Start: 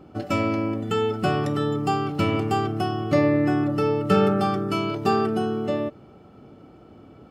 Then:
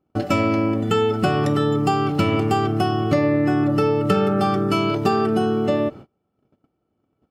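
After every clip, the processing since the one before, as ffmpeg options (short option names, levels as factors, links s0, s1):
-af "agate=range=0.0251:threshold=0.00794:ratio=16:detection=peak,acompressor=threshold=0.0794:ratio=6,volume=2.24"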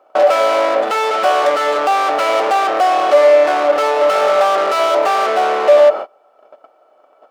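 -filter_complex "[0:a]equalizer=f=1200:w=1.4:g=5.5,asplit=2[s0][s1];[s1]highpass=f=720:p=1,volume=70.8,asoftclip=type=tanh:threshold=0.794[s2];[s0][s2]amix=inputs=2:normalize=0,lowpass=f=3400:p=1,volume=0.501,highpass=f=600:t=q:w=4.9,volume=0.316"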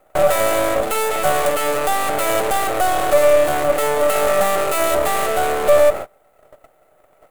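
-filter_complex "[0:a]acrossover=split=540[s0][s1];[s1]aeval=exprs='max(val(0),0)':c=same[s2];[s0][s2]amix=inputs=2:normalize=0,aexciter=amount=7.2:drive=5.1:freq=7400,volume=0.891"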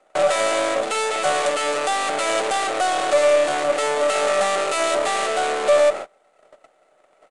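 -filter_complex "[0:a]aresample=22050,aresample=44100,acrossover=split=190 6300:gain=0.178 1 0.112[s0][s1][s2];[s0][s1][s2]amix=inputs=3:normalize=0,crystalizer=i=3:c=0,volume=0.668"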